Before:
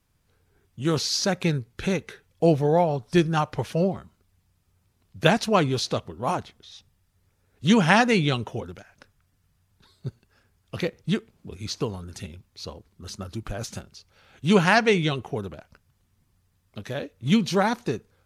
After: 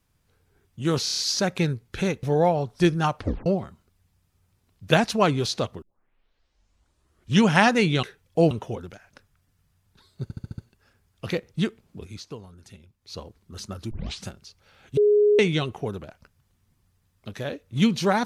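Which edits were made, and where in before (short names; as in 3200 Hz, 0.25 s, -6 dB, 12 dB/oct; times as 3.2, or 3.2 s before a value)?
1.03 stutter 0.03 s, 6 plays
2.08–2.56 move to 8.36
3.51 tape stop 0.28 s
6.15 tape start 1.66 s
10.08 stutter 0.07 s, 6 plays
11.52–12.68 dip -10.5 dB, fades 0.20 s
13.41 tape start 0.34 s
14.47–14.89 bleep 416 Hz -14.5 dBFS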